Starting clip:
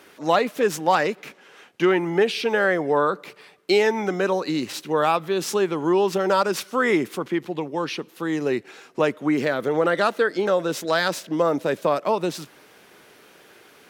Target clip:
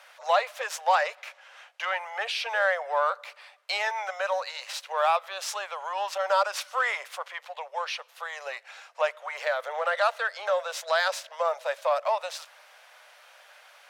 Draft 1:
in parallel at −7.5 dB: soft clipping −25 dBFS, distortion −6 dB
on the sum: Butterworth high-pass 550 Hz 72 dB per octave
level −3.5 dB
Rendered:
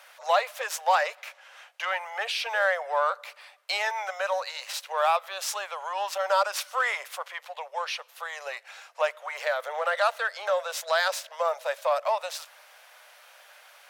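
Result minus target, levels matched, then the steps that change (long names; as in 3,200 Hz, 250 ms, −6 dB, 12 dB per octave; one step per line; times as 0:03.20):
8,000 Hz band +2.5 dB
add after Butterworth high-pass: high-shelf EQ 11,000 Hz −11.5 dB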